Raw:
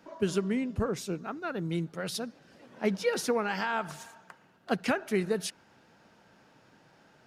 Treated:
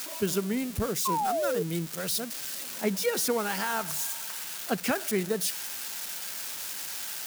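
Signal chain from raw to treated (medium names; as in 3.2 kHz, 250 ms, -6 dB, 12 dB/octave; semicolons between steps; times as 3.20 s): zero-crossing glitches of -24.5 dBFS; painted sound fall, 1.05–1.63 s, 430–1100 Hz -28 dBFS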